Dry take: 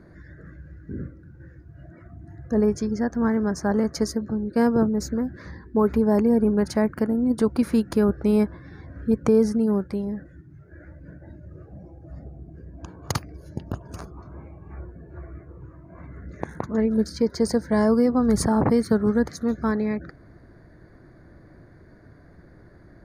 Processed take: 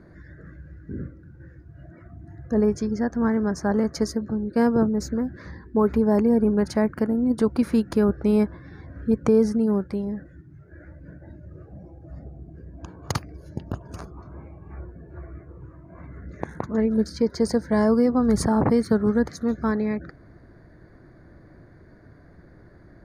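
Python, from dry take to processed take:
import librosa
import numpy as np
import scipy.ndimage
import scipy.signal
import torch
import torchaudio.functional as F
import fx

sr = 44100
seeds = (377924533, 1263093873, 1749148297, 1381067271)

y = fx.high_shelf(x, sr, hz=8300.0, db=-5.5)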